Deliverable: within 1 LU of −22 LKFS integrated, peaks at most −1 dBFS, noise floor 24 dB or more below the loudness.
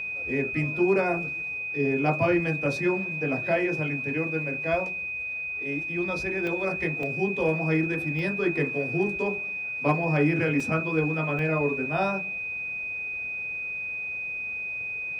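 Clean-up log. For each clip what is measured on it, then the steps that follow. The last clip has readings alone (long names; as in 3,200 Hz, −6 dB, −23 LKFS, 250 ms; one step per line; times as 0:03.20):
number of dropouts 5; longest dropout 2.2 ms; interfering tone 2,500 Hz; level of the tone −30 dBFS; integrated loudness −26.5 LKFS; sample peak −12.0 dBFS; target loudness −22.0 LKFS
→ repair the gap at 0:06.47/0:07.03/0:08.19/0:10.60/0:11.39, 2.2 ms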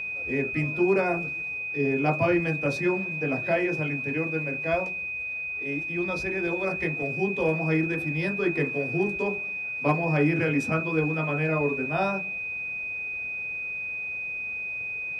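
number of dropouts 0; interfering tone 2,500 Hz; level of the tone −30 dBFS
→ notch filter 2,500 Hz, Q 30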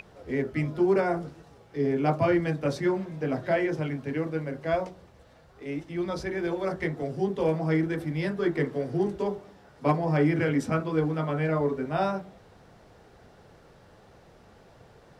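interfering tone none found; integrated loudness −28.0 LKFS; sample peak −12.5 dBFS; target loudness −22.0 LKFS
→ level +6 dB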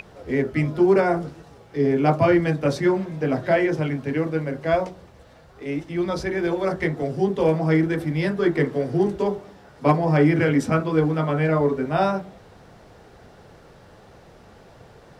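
integrated loudness −22.0 LKFS; sample peak −6.5 dBFS; background noise floor −49 dBFS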